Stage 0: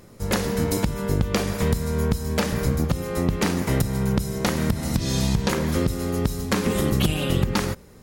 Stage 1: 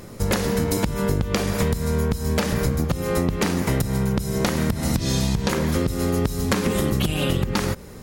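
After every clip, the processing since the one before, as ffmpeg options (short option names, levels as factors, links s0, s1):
-af "acompressor=threshold=0.0447:ratio=6,volume=2.66"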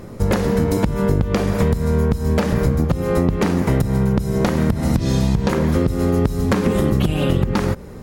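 -af "highshelf=f=2100:g=-11,volume=1.78"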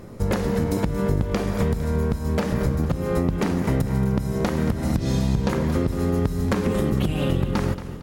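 -af "aecho=1:1:228|456|684|912|1140|1368:0.224|0.121|0.0653|0.0353|0.019|0.0103,volume=0.562"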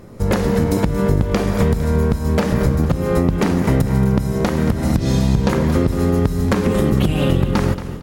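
-af "dynaudnorm=f=140:g=3:m=2.11"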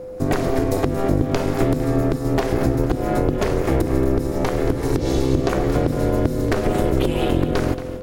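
-af "aeval=exprs='val(0)*sin(2*PI*200*n/s)':c=same,aeval=exprs='val(0)+0.0282*sin(2*PI*510*n/s)':c=same"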